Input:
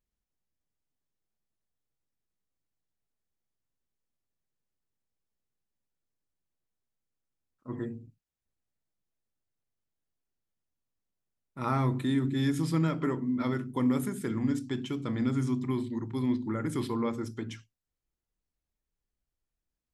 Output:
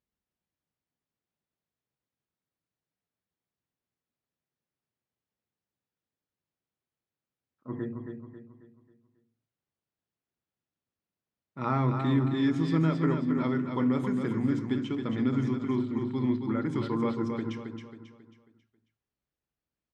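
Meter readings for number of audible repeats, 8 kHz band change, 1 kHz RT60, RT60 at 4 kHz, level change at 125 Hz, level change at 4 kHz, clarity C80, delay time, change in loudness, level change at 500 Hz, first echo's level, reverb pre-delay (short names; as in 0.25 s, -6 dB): 4, under -10 dB, none, none, +2.0 dB, -1.0 dB, none, 0.271 s, +2.0 dB, +2.5 dB, -6.0 dB, none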